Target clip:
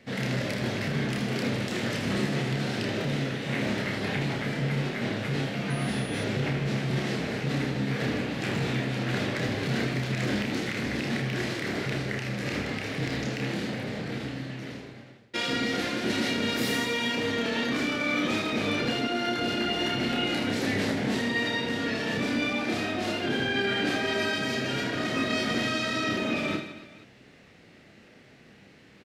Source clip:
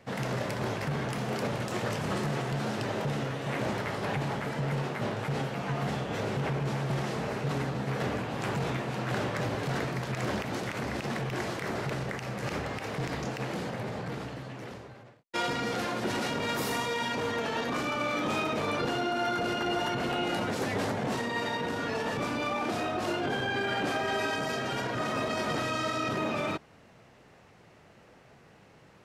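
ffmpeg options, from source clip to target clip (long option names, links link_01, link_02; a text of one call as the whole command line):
ffmpeg -i in.wav -filter_complex "[0:a]equalizer=frequency=250:width_type=o:width=1:gain=7,equalizer=frequency=1000:width_type=o:width=1:gain=-7,equalizer=frequency=2000:width_type=o:width=1:gain=6,equalizer=frequency=4000:width_type=o:width=1:gain=6,asplit=2[link_01][link_02];[link_02]aecho=0:1:30|78|154.8|277.7|474.3:0.631|0.398|0.251|0.158|0.1[link_03];[link_01][link_03]amix=inputs=2:normalize=0,asettb=1/sr,asplit=3[link_04][link_05][link_06];[link_04]atrim=end=5.704[link_07];[link_05]atrim=start=5.7:end=6.24,asetpts=PTS-STARTPTS,afade=type=in:duration=0.004:curve=qsin,afade=type=out:start_time=0.536:duration=0.004:curve=qsin,aeval=exprs='val(0)+0.00631*sin(2*PI*9900*n/s)':channel_layout=same[link_08];[link_06]atrim=start=6.236[link_09];[link_07][link_08]acrossfade=duration=0.004:curve1=hsin:curve2=qsin[link_10];[link_10][link_09]acrossfade=duration=0.004:curve1=qsin:curve2=hsin,volume=-2dB" out.wav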